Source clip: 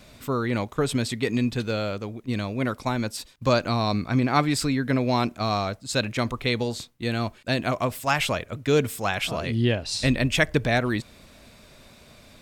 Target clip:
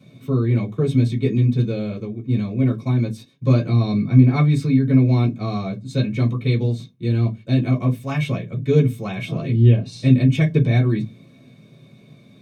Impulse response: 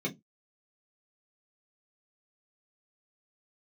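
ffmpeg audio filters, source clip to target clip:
-filter_complex "[0:a]equalizer=frequency=110:width=2:gain=14.5[link_01];[1:a]atrim=start_sample=2205[link_02];[link_01][link_02]afir=irnorm=-1:irlink=0,volume=-9.5dB"

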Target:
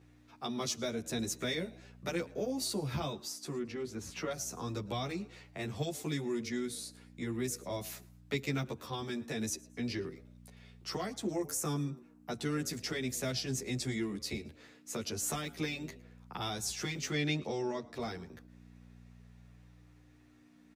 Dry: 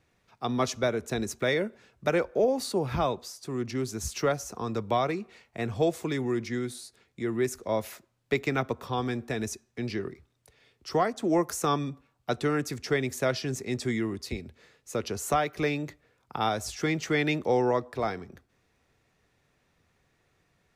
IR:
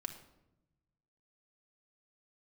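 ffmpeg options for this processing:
-filter_complex "[0:a]asettb=1/sr,asplit=3[link_01][link_02][link_03];[link_01]atrim=end=3.584[link_04];[link_02]atrim=start=3.58:end=4.31,asetpts=PTS-STARTPTS,afade=type=in:duration=0.004:curve=qsin,afade=type=out:start_time=0.726:duration=0.004:curve=qsin,bass=frequency=250:gain=-3,treble=frequency=4000:gain=-15[link_05];[link_03]atrim=start=4.306[link_06];[link_04][link_05]acrossfade=duration=0.004:curve1=hsin:curve2=qsin[link_07];[link_07][link_06]acrossfade=duration=0.004:curve1=qsin:curve2=hsin,acrossover=split=250|3000[link_08][link_09][link_10];[link_09]acompressor=threshold=-43dB:ratio=3[link_11];[link_08][link_11][link_10]amix=inputs=3:normalize=0,asettb=1/sr,asplit=3[link_12][link_13][link_14];[link_12]atrim=end=11.324[link_15];[link_13]atrim=start=11.32:end=12.4,asetpts=PTS-STARTPTS,afade=type=in:duration=0.004:curve=qsin,afade=type=out:start_time=1.076:duration=0.004:curve=qsin,equalizer=frequency=3600:width_type=o:width=1:gain=-8.5[link_16];[link_14]atrim=start=12.396[link_17];[link_15][link_16]acrossfade=duration=0.004:curve1=hsin:curve2=qsin[link_18];[link_18][link_17]acrossfade=duration=0.004:curve1=qsin:curve2=hsin,asettb=1/sr,asplit=3[link_19][link_20][link_21];[link_19]atrim=end=17.114[link_22];[link_20]atrim=start=17.11:end=17.94,asetpts=PTS-STARTPTS,afade=type=in:duration=0.004:curve=qsin,afade=type=out:start_time=0.826:duration=0.004:curve=qsin,lowpass=7800[link_23];[link_21]atrim=start=17.936[link_24];[link_22][link_23]acrossfade=duration=0.004:curve1=hsin:curve2=qsin[link_25];[link_25][link_24]acrossfade=duration=0.004:curve1=qsin:curve2=hsin,asplit=2[link_26][link_27];[link_27]asplit=2[link_28][link_29];[link_28]adelay=111,afreqshift=100,volume=-23dB[link_30];[link_29]adelay=222,afreqshift=200,volume=-32.4dB[link_31];[link_30][link_31]amix=inputs=2:normalize=0[link_32];[link_26][link_32]amix=inputs=2:normalize=0,aeval=exprs='val(0)+0.00316*(sin(2*PI*60*n/s)+sin(2*PI*2*60*n/s)/2+sin(2*PI*3*60*n/s)/3+sin(2*PI*4*60*n/s)/4+sin(2*PI*5*60*n/s)/5)':channel_layout=same,asplit=2[link_33][link_34];[link_34]asoftclip=type=hard:threshold=-29.5dB,volume=-10.5dB[link_35];[link_33][link_35]amix=inputs=2:normalize=0,highpass=frequency=190:poles=1,asplit=2[link_36][link_37];[link_37]adelay=11.4,afreqshift=0.35[link_38];[link_36][link_38]amix=inputs=2:normalize=1,volume=1.5dB"

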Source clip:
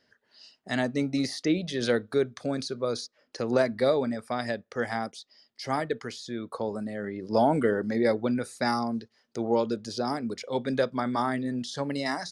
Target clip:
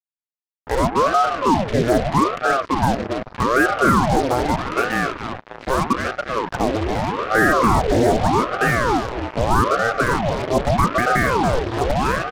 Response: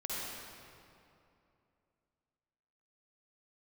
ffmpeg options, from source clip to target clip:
-filter_complex "[0:a]lowpass=frequency=2100:width=0.5412,lowpass=frequency=2100:width=1.3066,lowshelf=frequency=330:gain=5,bandreject=frequency=60:width_type=h:width=6,bandreject=frequency=120:width_type=h:width=6,bandreject=frequency=180:width_type=h:width=6,bandreject=frequency=240:width_type=h:width=6,bandreject=frequency=300:width_type=h:width=6,bandreject=frequency=360:width_type=h:width=6,bandreject=frequency=420:width_type=h:width=6,bandreject=frequency=480:width_type=h:width=6,bandreject=frequency=540:width_type=h:width=6,acrossover=split=1200[link_01][link_02];[link_02]acompressor=threshold=-47dB:ratio=6[link_03];[link_01][link_03]amix=inputs=2:normalize=0,asplit=6[link_04][link_05][link_06][link_07][link_08][link_09];[link_05]adelay=279,afreqshift=-31,volume=-8dB[link_10];[link_06]adelay=558,afreqshift=-62,volume=-14.6dB[link_11];[link_07]adelay=837,afreqshift=-93,volume=-21.1dB[link_12];[link_08]adelay=1116,afreqshift=-124,volume=-27.7dB[link_13];[link_09]adelay=1395,afreqshift=-155,volume=-34.2dB[link_14];[link_04][link_10][link_11][link_12][link_13][link_14]amix=inputs=6:normalize=0,asplit=2[link_15][link_16];[1:a]atrim=start_sample=2205,lowpass=2400,lowshelf=frequency=150:gain=10[link_17];[link_16][link_17]afir=irnorm=-1:irlink=0,volume=-25.5dB[link_18];[link_15][link_18]amix=inputs=2:normalize=0,apsyclip=20dB,acrusher=bits=2:mix=0:aa=0.5,highpass=220,aeval=exprs='val(0)*sin(2*PI*560*n/s+560*0.8/0.81*sin(2*PI*0.81*n/s))':channel_layout=same,volume=-6.5dB"

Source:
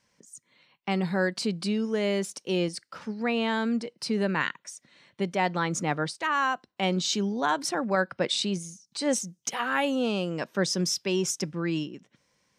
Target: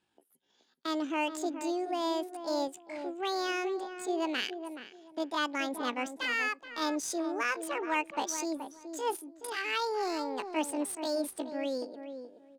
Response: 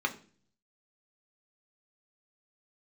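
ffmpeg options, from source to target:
-filter_complex "[0:a]asetrate=72056,aresample=44100,atempo=0.612027,adynamicsmooth=sensitivity=7:basefreq=5600,asplit=2[link_01][link_02];[link_02]adelay=425,lowpass=frequency=1200:poles=1,volume=-8dB,asplit=2[link_03][link_04];[link_04]adelay=425,lowpass=frequency=1200:poles=1,volume=0.22,asplit=2[link_05][link_06];[link_06]adelay=425,lowpass=frequency=1200:poles=1,volume=0.22[link_07];[link_01][link_03][link_05][link_07]amix=inputs=4:normalize=0,volume=-5.5dB"

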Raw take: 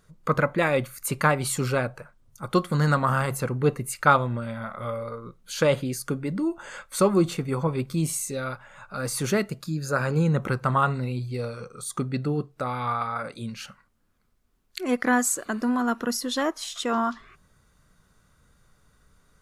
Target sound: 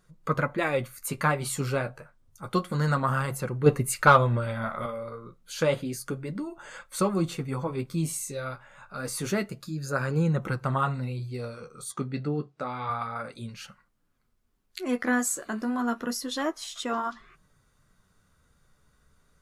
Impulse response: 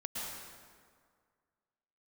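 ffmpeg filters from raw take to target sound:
-filter_complex "[0:a]asettb=1/sr,asplit=3[link_01][link_02][link_03];[link_01]atrim=end=3.664[link_04];[link_02]atrim=start=3.66:end=4.86,asetpts=PTS-STARTPTS,afade=type=in:duration=0.004:curve=qsin,afade=type=out:start_time=1.196:duration=0.004:curve=qsin,acontrast=77[link_05];[link_03]atrim=start=4.856[link_06];[link_04][link_05]acrossfade=duration=0.004:curve1=hsin:curve2=qsin[link_07];[link_07][link_06]acrossfade=duration=0.004:curve1=qsin:curve2=hsin,flanger=delay=5.4:depth=9.3:regen=-38:speed=0.29:shape=triangular,asettb=1/sr,asplit=3[link_08][link_09][link_10];[link_08]atrim=end=11.924[link_11];[link_09]atrim=start=11.92:end=12.9,asetpts=PTS-STARTPTS,afade=type=in:duration=0.004:curve=qsin,afade=type=out:start_time=0.976:duration=0.004:curve=qsin,highpass=110,lowpass=6600[link_12];[link_10]atrim=start=12.896[link_13];[link_11][link_12]acrossfade=duration=0.004:curve1=hsin:curve2=qsin[link_14];[link_14][link_13]acrossfade=duration=0.004:curve1=qsin:curve2=hsin"

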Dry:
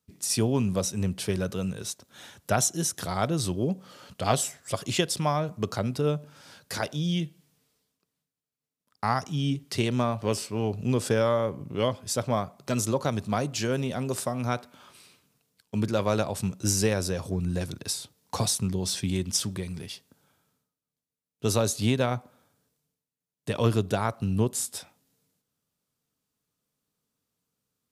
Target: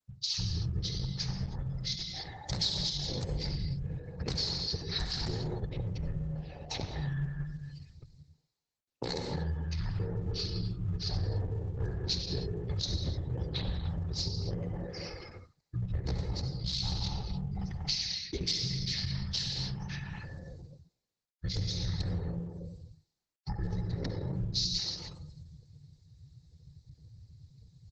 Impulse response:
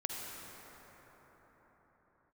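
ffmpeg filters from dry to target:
-filter_complex "[0:a]acrossover=split=240[link_01][link_02];[link_02]aeval=exprs='(mod(5.31*val(0)+1,2)-1)/5.31':channel_layout=same[link_03];[link_01][link_03]amix=inputs=2:normalize=0,afreqshift=-410,highpass=58,aecho=1:1:1.4:0.7,areverse,acompressor=mode=upward:threshold=-29dB:ratio=2.5,areverse,asplit=2[link_04][link_05];[link_05]adelay=240,highpass=300,lowpass=3400,asoftclip=type=hard:threshold=-16dB,volume=-9dB[link_06];[link_04][link_06]amix=inputs=2:normalize=0[link_07];[1:a]atrim=start_sample=2205,afade=type=out:start_time=0.37:duration=0.01,atrim=end_sample=16758[link_08];[link_07][link_08]afir=irnorm=-1:irlink=0,afftdn=noise_reduction=29:noise_floor=-43,asetrate=26222,aresample=44100,atempo=1.68179,firequalizer=gain_entry='entry(140,0);entry(310,-3);entry(540,-4);entry(820,-2);entry(1300,-16);entry(1900,-5);entry(2900,-15);entry(4100,8);entry(6700,-5);entry(11000,-17)':delay=0.05:min_phase=1,acompressor=threshold=-46dB:ratio=2.5,volume=7.5dB" -ar 48000 -c:a libopus -b:a 10k

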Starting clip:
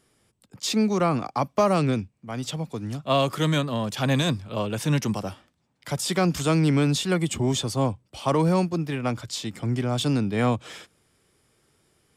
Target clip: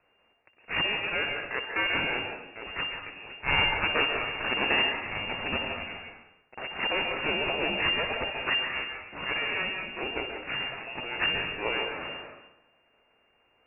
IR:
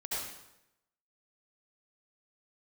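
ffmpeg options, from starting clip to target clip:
-filter_complex "[0:a]aemphasis=mode=production:type=riaa,aexciter=amount=4.2:drive=6.5:freq=2200,atempo=0.89,aresample=8000,aeval=exprs='max(val(0),0)':channel_layout=same,aresample=44100,lowpass=frequency=2400:width_type=q:width=0.5098,lowpass=frequency=2400:width_type=q:width=0.6013,lowpass=frequency=2400:width_type=q:width=0.9,lowpass=frequency=2400:width_type=q:width=2.563,afreqshift=-2800,highshelf=frequency=2100:gain=-9,asplit=2[link_01][link_02];[1:a]atrim=start_sample=2205,adelay=60[link_03];[link_02][link_03]afir=irnorm=-1:irlink=0,volume=-6.5dB[link_04];[link_01][link_04]amix=inputs=2:normalize=0"

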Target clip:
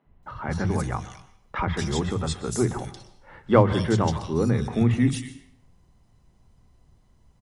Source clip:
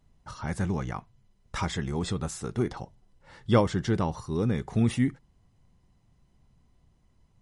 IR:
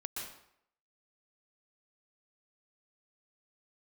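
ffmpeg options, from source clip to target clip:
-filter_complex "[0:a]acrossover=split=180|2700[link_01][link_02][link_03];[link_01]adelay=50[link_04];[link_03]adelay=230[link_05];[link_04][link_02][link_05]amix=inputs=3:normalize=0,asplit=2[link_06][link_07];[1:a]atrim=start_sample=2205[link_08];[link_07][link_08]afir=irnorm=-1:irlink=0,volume=-10dB[link_09];[link_06][link_09]amix=inputs=2:normalize=0,volume=4dB"

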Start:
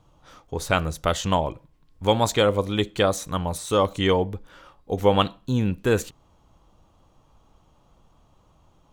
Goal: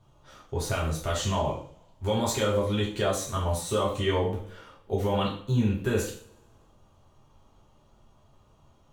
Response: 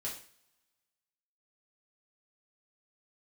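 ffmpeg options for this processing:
-filter_complex "[0:a]alimiter=limit=-15dB:level=0:latency=1:release=45[link_01];[1:a]atrim=start_sample=2205,asetrate=42336,aresample=44100[link_02];[link_01][link_02]afir=irnorm=-1:irlink=0,volume=-1.5dB"

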